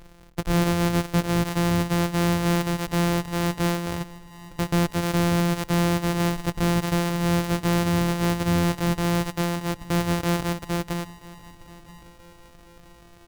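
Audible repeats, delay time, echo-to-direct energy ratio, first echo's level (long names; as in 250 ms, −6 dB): 3, 980 ms, −19.0 dB, −20.0 dB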